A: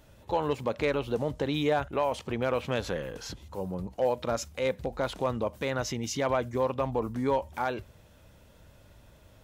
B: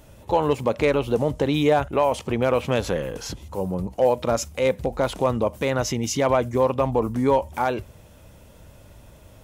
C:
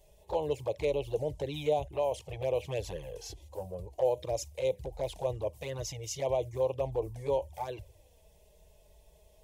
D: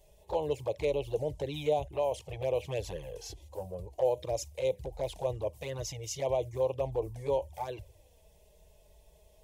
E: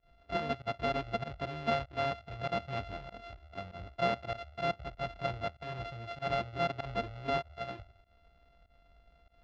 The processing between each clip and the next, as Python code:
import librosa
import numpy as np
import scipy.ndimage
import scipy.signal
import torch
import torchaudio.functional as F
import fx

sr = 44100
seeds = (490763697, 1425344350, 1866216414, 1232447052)

y1 = fx.graphic_eq_15(x, sr, hz=(1600, 4000, 10000), db=(-4, -4, 3))
y1 = F.gain(torch.from_numpy(y1), 8.0).numpy()
y2 = fx.fixed_phaser(y1, sr, hz=560.0, stages=4)
y2 = fx.env_flanger(y2, sr, rest_ms=5.3, full_db=-18.0)
y2 = F.gain(torch.from_numpy(y2), -7.0).numpy()
y3 = y2
y4 = np.r_[np.sort(y3[:len(y3) // 64 * 64].reshape(-1, 64), axis=1).ravel(), y3[len(y3) // 64 * 64:]]
y4 = fx.volume_shaper(y4, sr, bpm=97, per_beat=1, depth_db=-23, release_ms=89.0, shape='fast start')
y4 = scipy.signal.sosfilt(scipy.signal.butter(4, 4000.0, 'lowpass', fs=sr, output='sos'), y4)
y4 = F.gain(torch.from_numpy(y4), -2.5).numpy()